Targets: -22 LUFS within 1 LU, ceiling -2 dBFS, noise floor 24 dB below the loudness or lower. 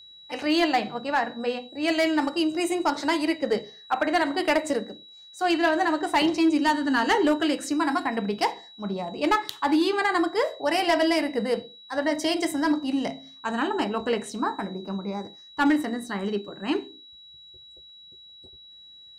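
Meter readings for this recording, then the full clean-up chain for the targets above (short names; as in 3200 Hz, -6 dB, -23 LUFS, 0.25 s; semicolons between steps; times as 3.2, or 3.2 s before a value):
clipped 0.5%; flat tops at -15.0 dBFS; steady tone 3900 Hz; tone level -46 dBFS; loudness -25.5 LUFS; peak -15.0 dBFS; loudness target -22.0 LUFS
-> clip repair -15 dBFS; notch 3900 Hz, Q 30; gain +3.5 dB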